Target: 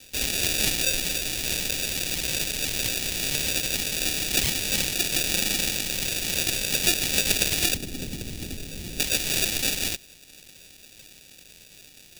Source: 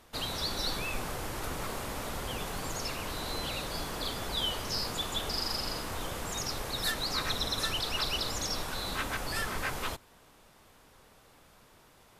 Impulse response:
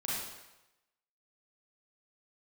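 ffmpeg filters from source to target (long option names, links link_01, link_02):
-filter_complex "[0:a]acrusher=samples=42:mix=1:aa=0.000001,aexciter=amount=4.7:drive=9.9:freq=2000,asettb=1/sr,asplit=3[link_01][link_02][link_03];[link_01]atrim=end=7.744[link_04];[link_02]atrim=start=7.74:end=9,asetpts=PTS-STARTPTS,afade=type=in:duration=0.004:curve=qsin,afade=type=out:start_time=1.256:duration=0.004:curve=qsin,acrossover=split=380[link_05][link_06];[link_06]acompressor=threshold=-47dB:ratio=2[link_07];[link_05][link_07]amix=inputs=2:normalize=0[link_08];[link_03]atrim=start=8.996[link_09];[link_04][link_08]acrossfade=duration=0.004:curve1=hsin:curve2=qsin[link_10];[link_10][link_09]acrossfade=duration=0.004:curve1=qsin:curve2=hsin"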